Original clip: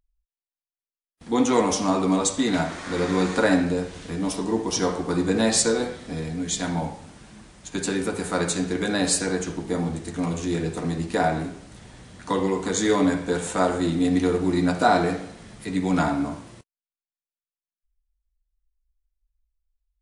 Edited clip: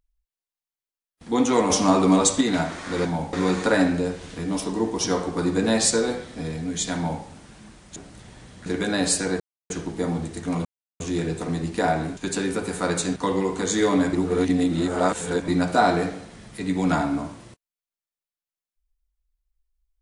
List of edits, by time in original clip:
1.7–2.41 gain +4 dB
6.68–6.96 copy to 3.05
7.68–8.67 swap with 11.53–12.23
9.41 insert silence 0.30 s
10.36 insert silence 0.35 s
13.2–14.55 reverse

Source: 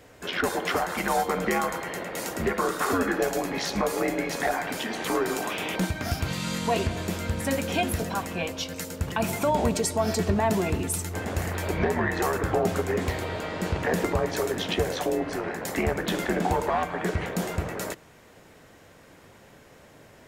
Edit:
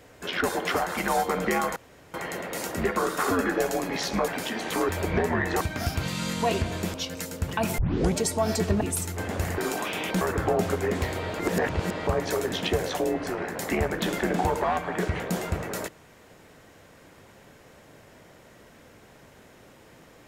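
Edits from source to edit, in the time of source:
1.76 insert room tone 0.38 s
3.9–4.62 cut
5.23–5.86 swap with 11.55–12.27
7.19–8.53 cut
9.37 tape start 0.38 s
10.4–10.78 cut
13.45–14.13 reverse

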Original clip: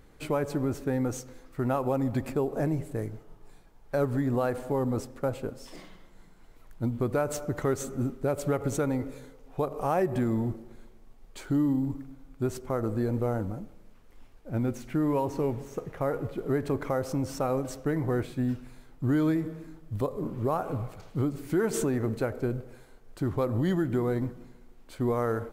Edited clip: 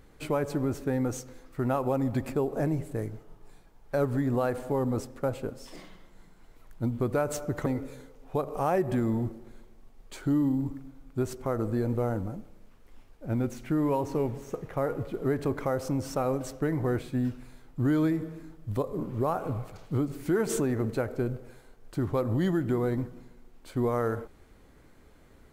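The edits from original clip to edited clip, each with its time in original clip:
7.66–8.9 cut

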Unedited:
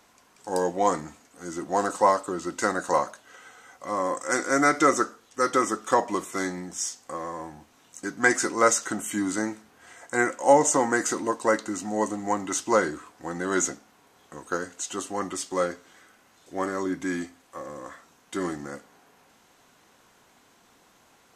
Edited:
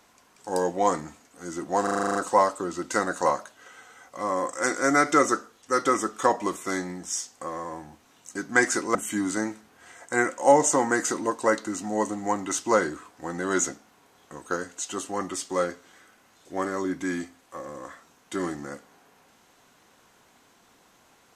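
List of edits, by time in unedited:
1.83 stutter 0.04 s, 9 plays
8.63–8.96 cut

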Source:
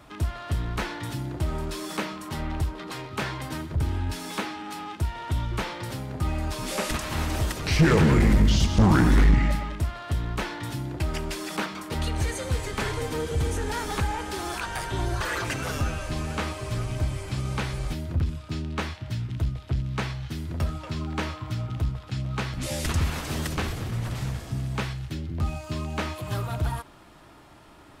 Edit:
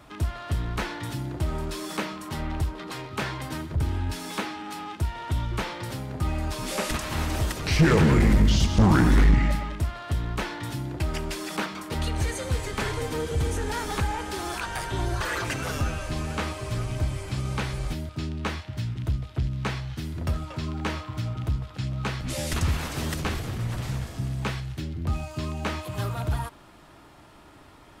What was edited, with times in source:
18.09–18.42 cut

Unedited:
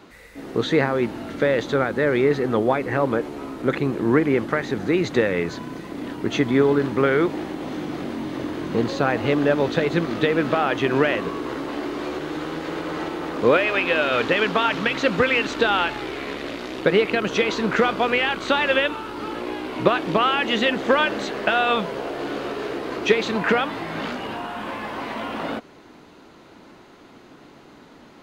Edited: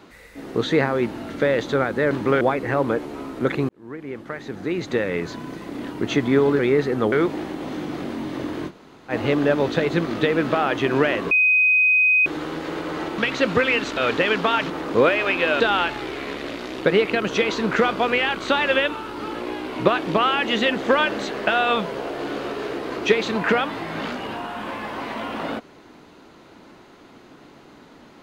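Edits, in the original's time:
2.11–2.64 swap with 6.82–7.12
3.92–5.74 fade in
8.69–9.11 room tone, crossfade 0.06 s
11.31–12.26 bleep 2510 Hz -13.5 dBFS
13.18–14.08 swap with 14.81–15.6

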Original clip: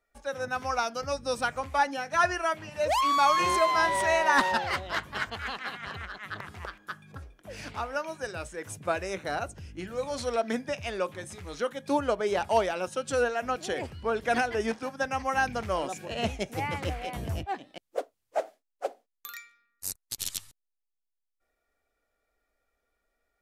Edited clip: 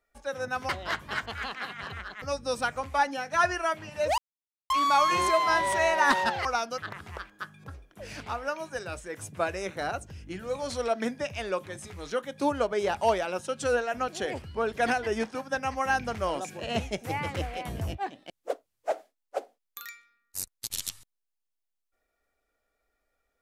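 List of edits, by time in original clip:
0.69–1.02 swap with 4.73–6.26
2.98 insert silence 0.52 s

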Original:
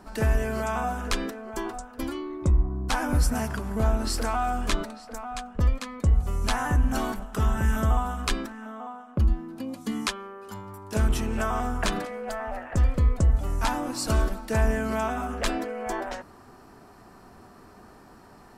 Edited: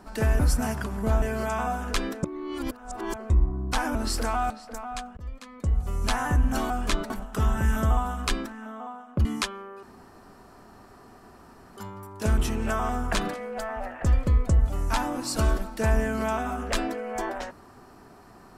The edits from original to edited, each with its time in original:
1.4–2.47 reverse
3.12–3.95 move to 0.39
4.5–4.9 move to 7.1
5.57–6.46 fade in, from -23 dB
9.25–9.9 cut
10.48 insert room tone 1.94 s

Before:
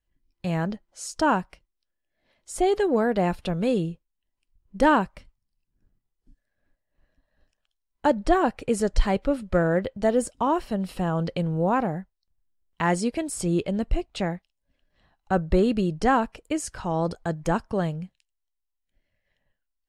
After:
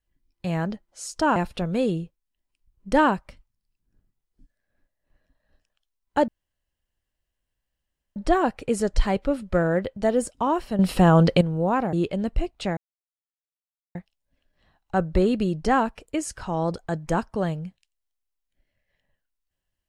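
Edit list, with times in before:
1.36–3.24 cut
8.16 insert room tone 1.88 s
10.79–11.41 gain +10 dB
11.93–13.48 cut
14.32 insert silence 1.18 s

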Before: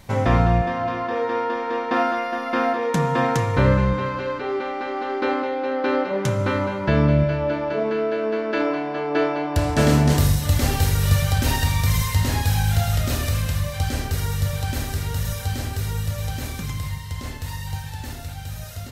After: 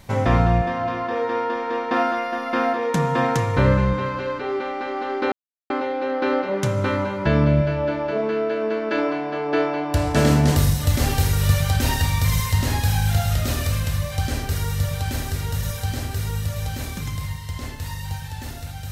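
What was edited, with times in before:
5.32 insert silence 0.38 s

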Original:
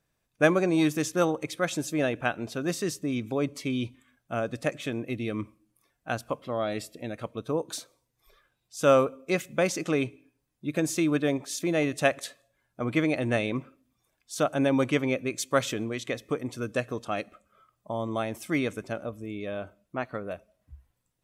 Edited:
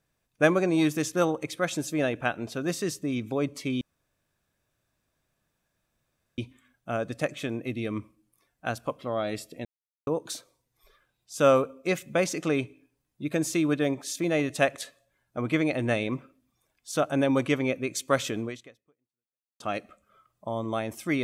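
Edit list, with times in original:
3.81 insert room tone 2.57 s
7.08–7.5 mute
15.9–17.03 fade out exponential

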